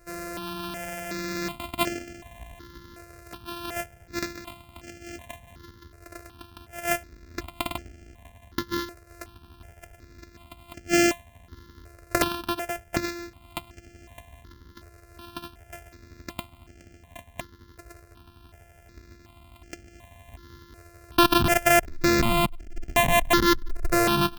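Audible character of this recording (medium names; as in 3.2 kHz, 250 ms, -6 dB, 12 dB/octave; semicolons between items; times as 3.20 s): a buzz of ramps at a fixed pitch in blocks of 128 samples; notches that jump at a steady rate 2.7 Hz 890–3800 Hz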